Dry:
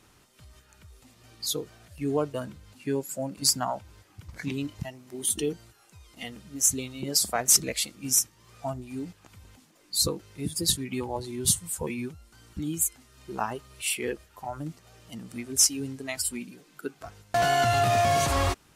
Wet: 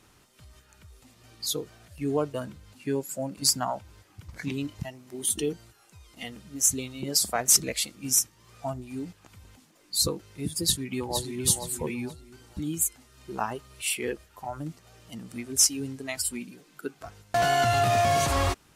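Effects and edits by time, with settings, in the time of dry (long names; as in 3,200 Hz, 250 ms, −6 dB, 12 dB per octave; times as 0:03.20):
0:10.63–0:11.42: delay throw 470 ms, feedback 30%, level −7 dB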